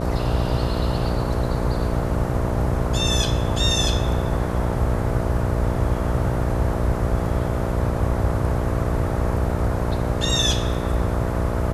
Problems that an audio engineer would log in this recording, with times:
buzz 60 Hz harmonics 11 -26 dBFS

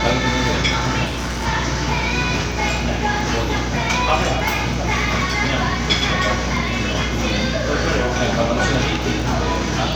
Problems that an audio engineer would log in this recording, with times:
buzz 60 Hz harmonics 10 -25 dBFS
crackle 10 per s -25 dBFS
1.05–1.47 s: clipped -20.5 dBFS

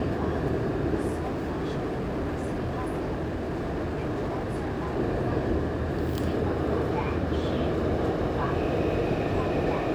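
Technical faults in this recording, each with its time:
1.07–4.97 s: clipped -26.5 dBFS

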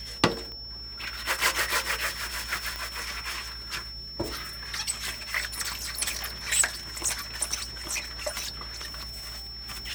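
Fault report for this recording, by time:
whine 5.4 kHz -38 dBFS
0.52 s: pop -28 dBFS
2.76 s: pop -17 dBFS

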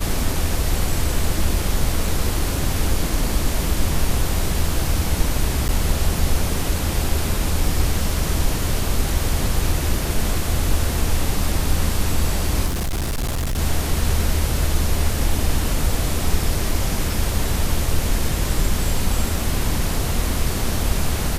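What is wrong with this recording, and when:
5.68–5.69 s: dropout 9.5 ms
12.66–13.59 s: clipped -19.5 dBFS

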